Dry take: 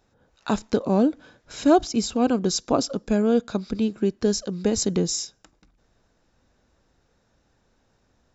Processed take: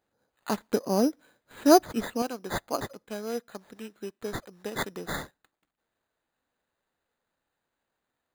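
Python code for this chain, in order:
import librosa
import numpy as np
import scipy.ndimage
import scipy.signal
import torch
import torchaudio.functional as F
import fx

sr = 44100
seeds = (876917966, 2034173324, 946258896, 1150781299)

y = fx.highpass(x, sr, hz=fx.steps((0.0, 290.0), (2.22, 910.0)), slope=6)
y = np.repeat(y[::8], 8)[:len(y)]
y = fx.upward_expand(y, sr, threshold_db=-38.0, expansion=1.5)
y = y * 10.0 ** (1.5 / 20.0)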